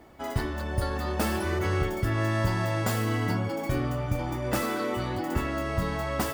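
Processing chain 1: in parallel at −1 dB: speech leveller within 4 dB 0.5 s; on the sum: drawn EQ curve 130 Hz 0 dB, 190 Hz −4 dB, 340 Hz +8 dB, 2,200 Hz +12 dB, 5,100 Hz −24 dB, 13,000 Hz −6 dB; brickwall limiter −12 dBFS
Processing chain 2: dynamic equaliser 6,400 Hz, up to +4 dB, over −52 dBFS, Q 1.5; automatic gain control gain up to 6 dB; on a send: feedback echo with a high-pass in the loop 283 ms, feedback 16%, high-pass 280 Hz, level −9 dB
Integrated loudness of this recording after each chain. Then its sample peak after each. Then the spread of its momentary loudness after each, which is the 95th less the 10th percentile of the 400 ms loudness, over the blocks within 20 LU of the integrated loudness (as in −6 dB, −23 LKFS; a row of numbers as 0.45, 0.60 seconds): −20.5, −22.5 LKFS; −12.0, −7.5 dBFS; 1, 4 LU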